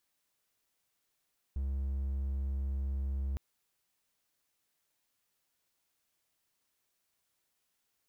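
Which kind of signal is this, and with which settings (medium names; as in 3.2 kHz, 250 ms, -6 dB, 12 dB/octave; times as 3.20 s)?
tone triangle 67.8 Hz -29.5 dBFS 1.81 s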